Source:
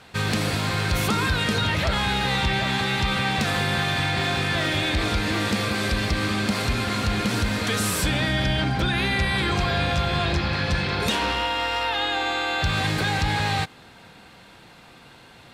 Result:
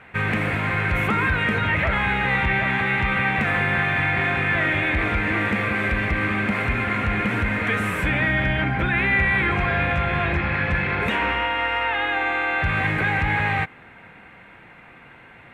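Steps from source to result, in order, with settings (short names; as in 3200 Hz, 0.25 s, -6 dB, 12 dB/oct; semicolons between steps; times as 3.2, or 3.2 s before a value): resonant high shelf 3200 Hz -14 dB, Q 3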